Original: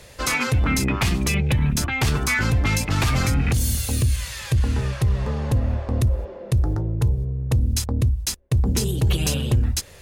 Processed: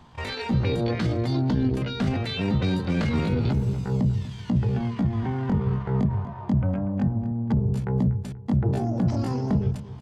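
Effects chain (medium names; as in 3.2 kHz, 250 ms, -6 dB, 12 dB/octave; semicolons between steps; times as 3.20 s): hum notches 60/120/180/240/300/360 Hz; pitch shift +10 st; tape spacing loss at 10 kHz 28 dB; feedback delay 241 ms, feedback 37%, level -15 dB; endings held to a fixed fall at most 140 dB/s; trim -1.5 dB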